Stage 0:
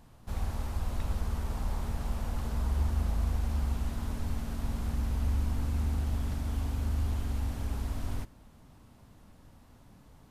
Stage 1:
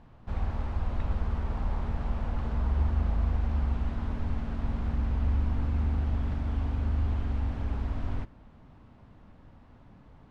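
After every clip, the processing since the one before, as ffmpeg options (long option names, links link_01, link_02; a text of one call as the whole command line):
ffmpeg -i in.wav -af "lowpass=2600,volume=2.5dB" out.wav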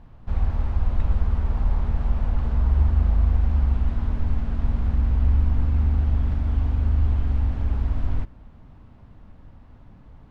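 ffmpeg -i in.wav -af "lowshelf=frequency=100:gain=9,volume=1.5dB" out.wav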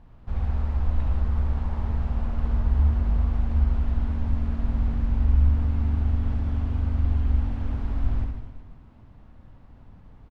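ffmpeg -i in.wav -af "aecho=1:1:70|154|254.8|375.8|520.9:0.631|0.398|0.251|0.158|0.1,volume=-4dB" out.wav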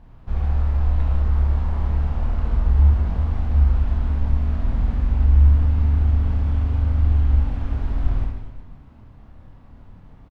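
ffmpeg -i in.wav -filter_complex "[0:a]asplit=2[link_01][link_02];[link_02]adelay=28,volume=-4.5dB[link_03];[link_01][link_03]amix=inputs=2:normalize=0,volume=2.5dB" out.wav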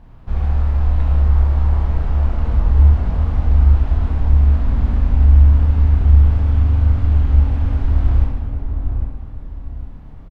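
ffmpeg -i in.wav -filter_complex "[0:a]asplit=2[link_01][link_02];[link_02]adelay=805,lowpass=frequency=830:poles=1,volume=-4.5dB,asplit=2[link_03][link_04];[link_04]adelay=805,lowpass=frequency=830:poles=1,volume=0.34,asplit=2[link_05][link_06];[link_06]adelay=805,lowpass=frequency=830:poles=1,volume=0.34,asplit=2[link_07][link_08];[link_08]adelay=805,lowpass=frequency=830:poles=1,volume=0.34[link_09];[link_01][link_03][link_05][link_07][link_09]amix=inputs=5:normalize=0,volume=3.5dB" out.wav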